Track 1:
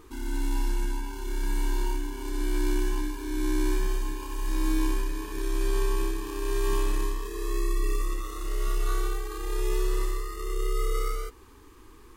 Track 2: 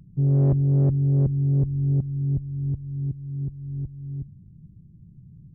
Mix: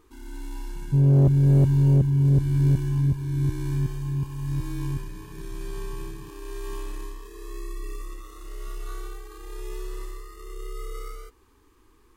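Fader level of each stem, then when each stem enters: -8.0 dB, +2.0 dB; 0.00 s, 0.75 s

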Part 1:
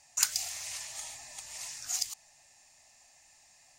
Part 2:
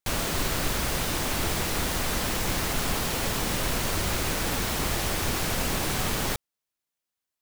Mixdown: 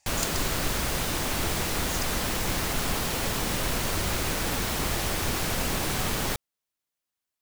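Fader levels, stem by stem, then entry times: -6.0 dB, -0.5 dB; 0.00 s, 0.00 s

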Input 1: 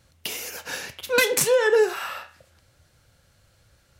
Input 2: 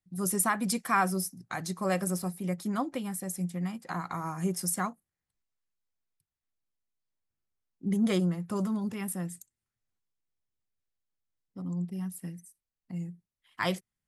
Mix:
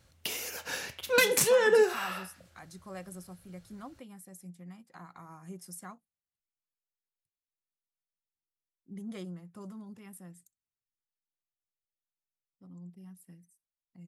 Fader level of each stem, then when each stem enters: -4.0 dB, -14.5 dB; 0.00 s, 1.05 s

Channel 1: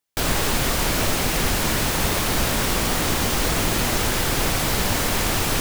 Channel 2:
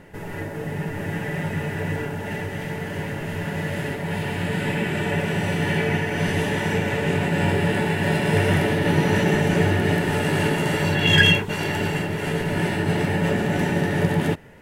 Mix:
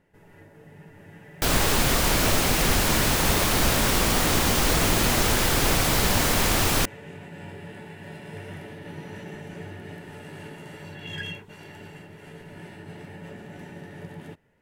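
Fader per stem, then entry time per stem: 0.0 dB, -19.5 dB; 1.25 s, 0.00 s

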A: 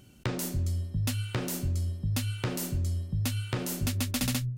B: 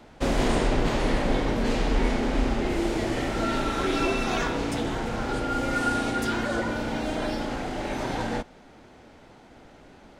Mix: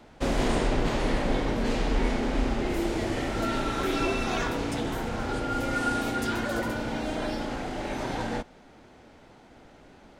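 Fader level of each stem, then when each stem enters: -15.0 dB, -2.0 dB; 2.35 s, 0.00 s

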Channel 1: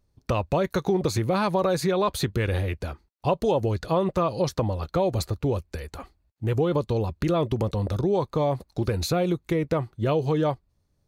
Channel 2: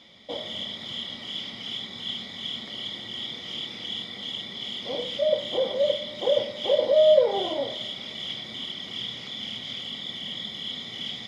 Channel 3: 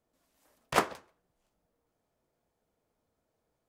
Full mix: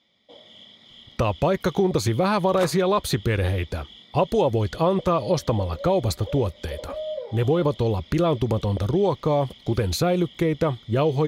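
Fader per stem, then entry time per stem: +2.5 dB, -14.0 dB, -5.5 dB; 0.90 s, 0.00 s, 1.85 s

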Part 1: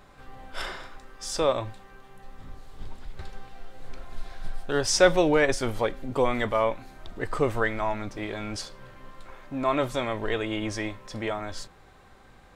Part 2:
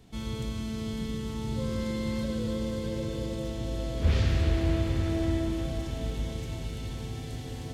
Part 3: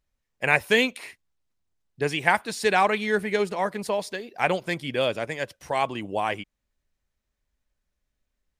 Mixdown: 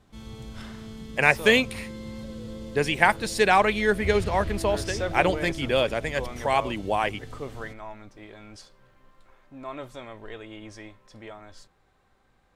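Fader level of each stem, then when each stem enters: -12.0 dB, -7.0 dB, +1.5 dB; 0.00 s, 0.00 s, 0.75 s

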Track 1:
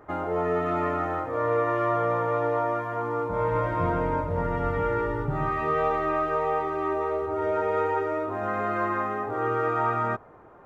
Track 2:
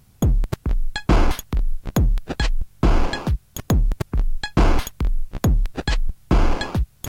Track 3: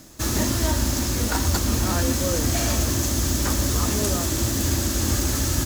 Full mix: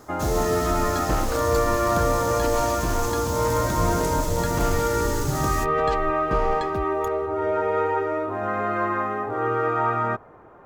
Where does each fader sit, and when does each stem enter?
+2.5 dB, -11.0 dB, -8.0 dB; 0.00 s, 0.00 s, 0.00 s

